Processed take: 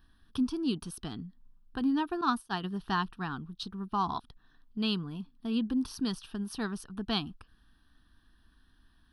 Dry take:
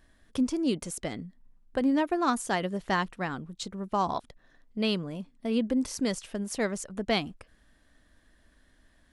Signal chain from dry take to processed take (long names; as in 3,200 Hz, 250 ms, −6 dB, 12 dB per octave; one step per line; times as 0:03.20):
0:02.21–0:02.64: downward expander −25 dBFS
phaser with its sweep stopped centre 2,100 Hz, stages 6